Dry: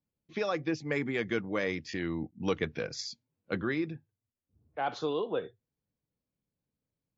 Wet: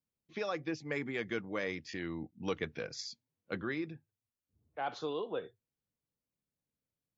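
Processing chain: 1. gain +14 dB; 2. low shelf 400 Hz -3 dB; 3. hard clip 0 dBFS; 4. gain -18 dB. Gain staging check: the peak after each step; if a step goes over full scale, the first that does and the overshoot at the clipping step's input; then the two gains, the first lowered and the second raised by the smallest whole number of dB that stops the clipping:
-2.0, -2.5, -2.5, -20.5 dBFS; no overload

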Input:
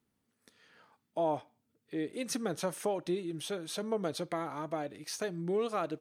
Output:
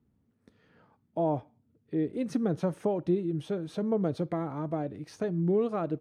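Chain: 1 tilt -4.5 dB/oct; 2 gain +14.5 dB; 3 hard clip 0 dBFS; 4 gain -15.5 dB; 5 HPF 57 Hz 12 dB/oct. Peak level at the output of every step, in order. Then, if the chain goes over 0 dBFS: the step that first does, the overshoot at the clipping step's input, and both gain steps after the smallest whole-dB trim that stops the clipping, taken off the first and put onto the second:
-16.0, -1.5, -1.5, -17.0, -17.0 dBFS; no overload

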